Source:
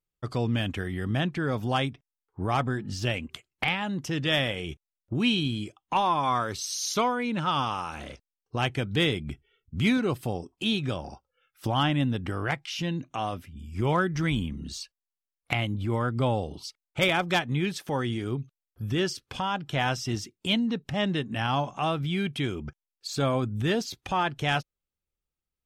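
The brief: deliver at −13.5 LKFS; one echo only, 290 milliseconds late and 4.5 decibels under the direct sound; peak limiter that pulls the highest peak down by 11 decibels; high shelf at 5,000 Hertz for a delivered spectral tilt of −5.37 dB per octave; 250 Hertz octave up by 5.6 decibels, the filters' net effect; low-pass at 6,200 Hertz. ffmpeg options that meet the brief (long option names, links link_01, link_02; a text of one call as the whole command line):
ffmpeg -i in.wav -af "lowpass=6200,equalizer=frequency=250:width_type=o:gain=7,highshelf=frequency=5000:gain=-4.5,alimiter=limit=-20.5dB:level=0:latency=1,aecho=1:1:290:0.596,volume=16dB" out.wav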